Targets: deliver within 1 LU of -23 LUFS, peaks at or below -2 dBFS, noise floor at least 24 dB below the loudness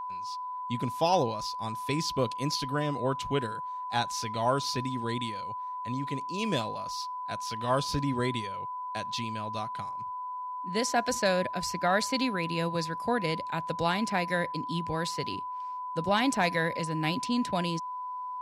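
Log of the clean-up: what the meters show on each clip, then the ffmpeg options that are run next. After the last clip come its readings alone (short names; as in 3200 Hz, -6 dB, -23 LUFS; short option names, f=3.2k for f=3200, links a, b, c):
steady tone 1000 Hz; tone level -34 dBFS; loudness -31.0 LUFS; peak -14.0 dBFS; loudness target -23.0 LUFS
-> -af "bandreject=f=1k:w=30"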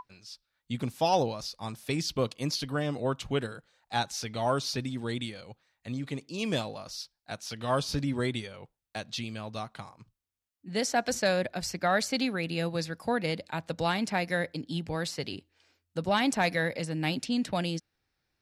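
steady tone none; loudness -31.5 LUFS; peak -14.0 dBFS; loudness target -23.0 LUFS
-> -af "volume=8.5dB"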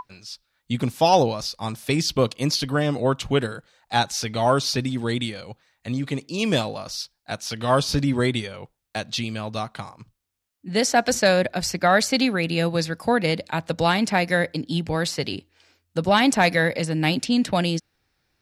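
loudness -23.0 LUFS; peak -5.5 dBFS; noise floor -74 dBFS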